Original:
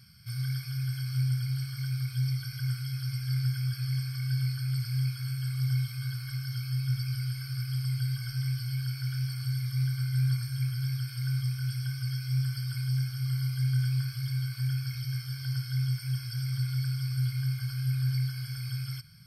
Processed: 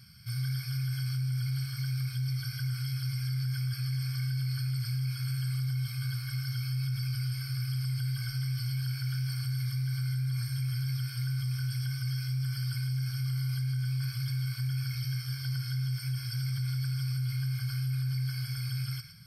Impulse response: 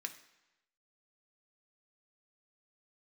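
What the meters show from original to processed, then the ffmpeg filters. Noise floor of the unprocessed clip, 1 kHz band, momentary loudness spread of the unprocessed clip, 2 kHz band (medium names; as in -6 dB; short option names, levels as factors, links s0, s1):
-41 dBFS, no reading, 5 LU, 0.0 dB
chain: -filter_complex "[0:a]asplit=2[s0][s1];[1:a]atrim=start_sample=2205,adelay=112[s2];[s1][s2]afir=irnorm=-1:irlink=0,volume=0.376[s3];[s0][s3]amix=inputs=2:normalize=0,alimiter=level_in=1.5:limit=0.0631:level=0:latency=1:release=17,volume=0.668,equalizer=f=430:w=8:g=-5,volume=1.19"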